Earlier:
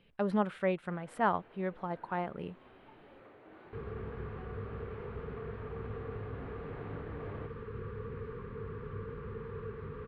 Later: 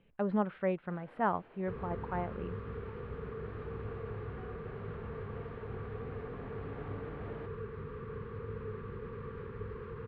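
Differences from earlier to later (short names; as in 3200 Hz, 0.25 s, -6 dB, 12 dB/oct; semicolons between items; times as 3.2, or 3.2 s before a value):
speech: add air absorption 430 m; second sound: entry -2.05 s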